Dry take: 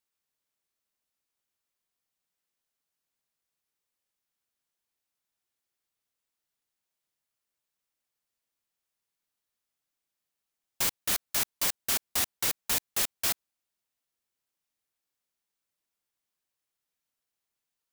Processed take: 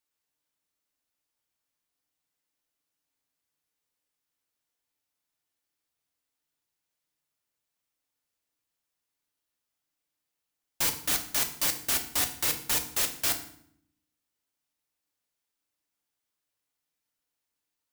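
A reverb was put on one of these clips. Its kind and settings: FDN reverb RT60 0.63 s, low-frequency decay 1.6×, high-frequency decay 0.85×, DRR 4.5 dB

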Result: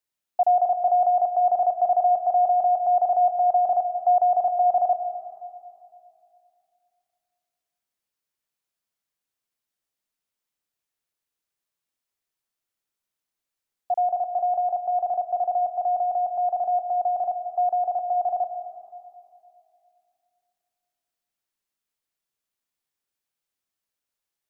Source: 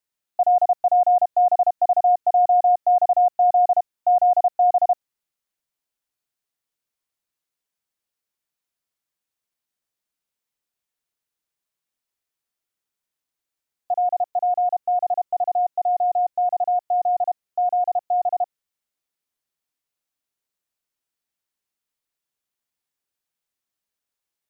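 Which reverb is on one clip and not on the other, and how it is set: algorithmic reverb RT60 2.5 s, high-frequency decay 0.85×, pre-delay 100 ms, DRR 9 dB; trim -1.5 dB

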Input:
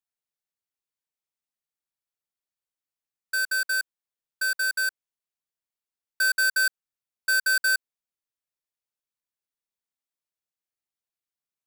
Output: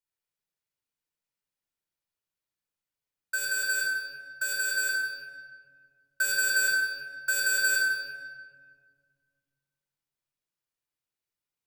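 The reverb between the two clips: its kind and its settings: simulated room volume 2800 m³, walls mixed, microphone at 4.7 m; trim -5 dB

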